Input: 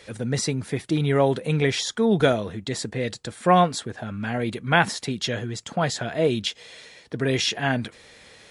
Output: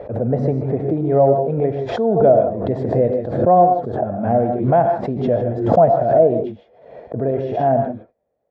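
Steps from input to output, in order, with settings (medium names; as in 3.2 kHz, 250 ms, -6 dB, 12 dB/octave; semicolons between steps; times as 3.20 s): gate -38 dBFS, range -28 dB; gain riding within 5 dB 0.5 s; resonant low-pass 650 Hz, resonance Q 4.9; gated-style reverb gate 180 ms rising, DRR 4.5 dB; swell ahead of each attack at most 65 dB/s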